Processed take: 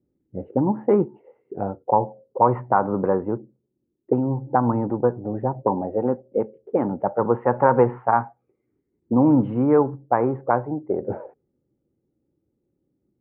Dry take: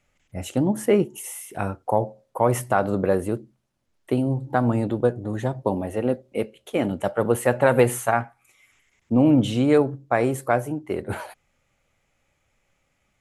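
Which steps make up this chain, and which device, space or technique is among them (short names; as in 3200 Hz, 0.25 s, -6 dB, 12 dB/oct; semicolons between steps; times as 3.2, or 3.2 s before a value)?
envelope filter bass rig (envelope low-pass 340–1000 Hz up, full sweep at -19 dBFS; speaker cabinet 81–2300 Hz, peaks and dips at 92 Hz -5 dB, 650 Hz -9 dB, 1100 Hz -4 dB)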